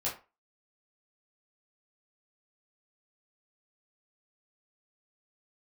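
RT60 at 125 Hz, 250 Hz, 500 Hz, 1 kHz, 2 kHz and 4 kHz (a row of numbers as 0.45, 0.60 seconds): 0.25, 0.30, 0.30, 0.30, 0.25, 0.20 seconds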